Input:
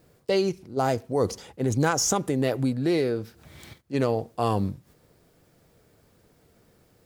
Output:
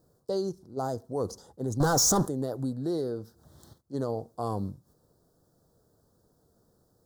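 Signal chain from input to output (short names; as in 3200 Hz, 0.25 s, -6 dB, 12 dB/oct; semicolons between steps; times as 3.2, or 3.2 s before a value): 1.8–2.28 sample leveller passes 5; limiter -13 dBFS, peak gain reduction 3.5 dB; Butterworth band-stop 2400 Hz, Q 0.8; gain -6.5 dB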